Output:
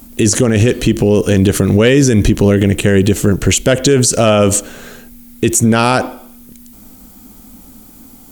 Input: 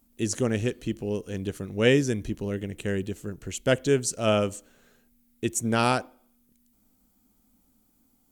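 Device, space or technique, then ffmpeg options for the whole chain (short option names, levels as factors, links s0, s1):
loud club master: -af "acompressor=threshold=0.0562:ratio=2,asoftclip=type=hard:threshold=0.141,alimiter=level_in=26.6:limit=0.891:release=50:level=0:latency=1,volume=0.841"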